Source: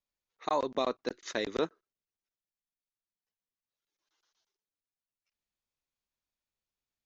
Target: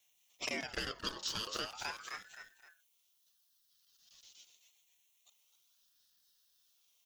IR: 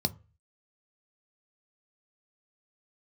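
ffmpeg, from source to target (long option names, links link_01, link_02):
-filter_complex "[0:a]aderivative,aeval=exprs='0.0316*sin(PI/2*3.16*val(0)/0.0316)':channel_layout=same,aphaser=in_gain=1:out_gain=1:delay=3.4:decay=0.26:speed=0.33:type=sinusoidal,asplit=5[link_01][link_02][link_03][link_04][link_05];[link_02]adelay=259,afreqshift=-97,volume=-10dB[link_06];[link_03]adelay=518,afreqshift=-194,volume=-18.6dB[link_07];[link_04]adelay=777,afreqshift=-291,volume=-27.3dB[link_08];[link_05]adelay=1036,afreqshift=-388,volume=-35.9dB[link_09];[link_01][link_06][link_07][link_08][link_09]amix=inputs=5:normalize=0[link_10];[1:a]atrim=start_sample=2205,afade=type=out:start_time=0.19:duration=0.01,atrim=end_sample=8820[link_11];[link_10][link_11]afir=irnorm=-1:irlink=0,acompressor=threshold=-38dB:ratio=16,aeval=exprs='val(0)*sin(2*PI*1200*n/s+1200*0.4/0.4*sin(2*PI*0.4*n/s))':channel_layout=same,volume=5.5dB"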